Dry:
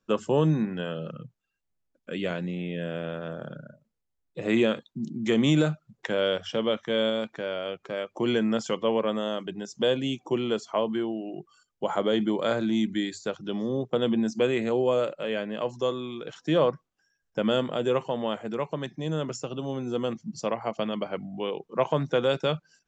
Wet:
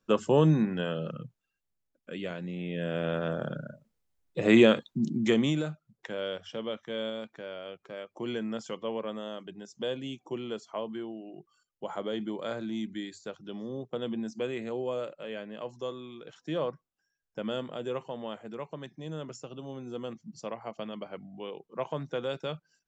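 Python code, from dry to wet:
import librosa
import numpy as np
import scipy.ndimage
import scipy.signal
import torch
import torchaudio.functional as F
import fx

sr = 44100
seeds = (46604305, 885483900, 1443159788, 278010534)

y = fx.gain(x, sr, db=fx.line((1.18, 0.5), (2.35, -7.0), (3.16, 4.0), (5.17, 4.0), (5.6, -9.0)))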